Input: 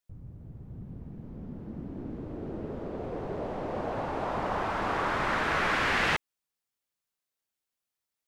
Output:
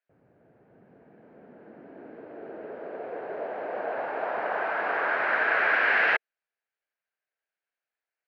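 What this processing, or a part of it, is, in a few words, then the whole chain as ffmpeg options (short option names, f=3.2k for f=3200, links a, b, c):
phone earpiece: -af "highpass=450,equalizer=f=450:t=q:w=4:g=4,equalizer=f=660:t=q:w=4:g=6,equalizer=f=1.1k:t=q:w=4:g=-4,equalizer=f=1.6k:t=q:w=4:g=10,equalizer=f=2.3k:t=q:w=4:g=3,equalizer=f=3.5k:t=q:w=4:g=-8,lowpass=f=3.7k:w=0.5412,lowpass=f=3.7k:w=1.3066"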